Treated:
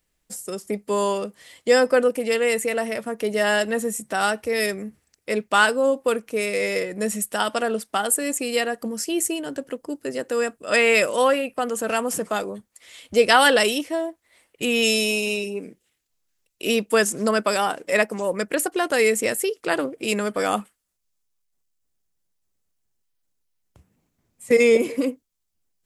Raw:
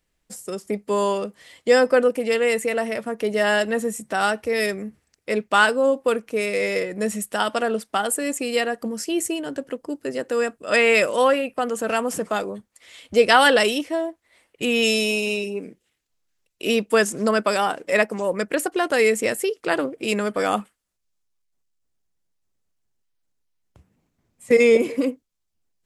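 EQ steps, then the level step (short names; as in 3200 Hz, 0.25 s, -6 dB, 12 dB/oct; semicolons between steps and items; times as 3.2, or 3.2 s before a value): high shelf 7000 Hz +7.5 dB; -1.0 dB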